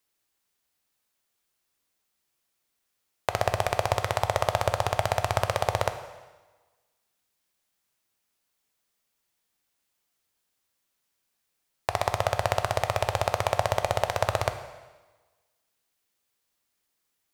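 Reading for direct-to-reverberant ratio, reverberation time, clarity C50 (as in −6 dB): 8.0 dB, 1.3 s, 10.5 dB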